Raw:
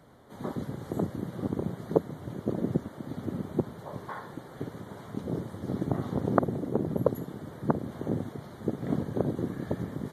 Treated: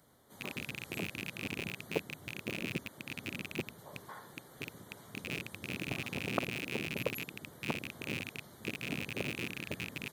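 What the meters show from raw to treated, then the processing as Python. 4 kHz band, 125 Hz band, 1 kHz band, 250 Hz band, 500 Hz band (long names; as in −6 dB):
+13.0 dB, −11.0 dB, −9.5 dB, −11.5 dB, −11.0 dB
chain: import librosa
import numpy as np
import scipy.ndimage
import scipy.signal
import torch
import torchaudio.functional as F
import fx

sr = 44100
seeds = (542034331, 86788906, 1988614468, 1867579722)

y = fx.rattle_buzz(x, sr, strikes_db=-36.0, level_db=-20.0)
y = F.preemphasis(torch.from_numpy(y), 0.8).numpy()
y = y * librosa.db_to_amplitude(2.5)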